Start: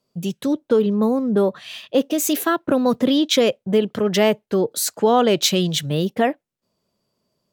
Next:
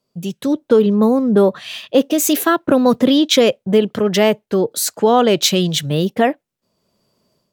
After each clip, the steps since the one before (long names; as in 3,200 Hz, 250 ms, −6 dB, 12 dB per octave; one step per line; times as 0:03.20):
automatic gain control gain up to 9 dB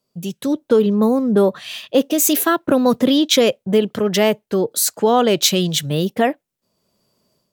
high-shelf EQ 6,700 Hz +6 dB
level −2 dB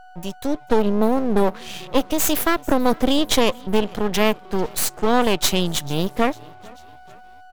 echo with shifted repeats 443 ms, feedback 50%, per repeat −35 Hz, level −23 dB
steady tone 740 Hz −38 dBFS
half-wave rectification